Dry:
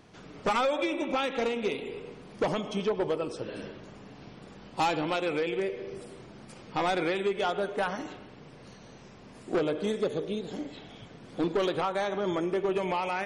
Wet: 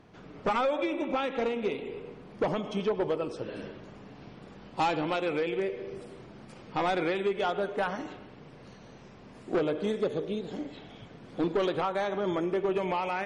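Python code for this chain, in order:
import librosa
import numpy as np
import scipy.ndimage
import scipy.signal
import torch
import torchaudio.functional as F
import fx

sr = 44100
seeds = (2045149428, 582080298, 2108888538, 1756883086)

y = fx.lowpass(x, sr, hz=fx.steps((0.0, 2200.0), (2.64, 3800.0)), slope=6)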